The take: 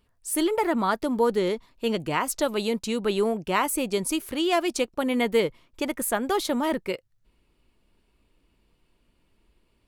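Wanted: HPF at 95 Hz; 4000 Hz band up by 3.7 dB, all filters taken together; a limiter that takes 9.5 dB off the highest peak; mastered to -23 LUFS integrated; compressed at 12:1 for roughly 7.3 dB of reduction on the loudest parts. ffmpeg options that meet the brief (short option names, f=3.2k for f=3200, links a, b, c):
-af "highpass=95,equalizer=f=4k:t=o:g=5,acompressor=threshold=-24dB:ratio=12,volume=9dB,alimiter=limit=-13.5dB:level=0:latency=1"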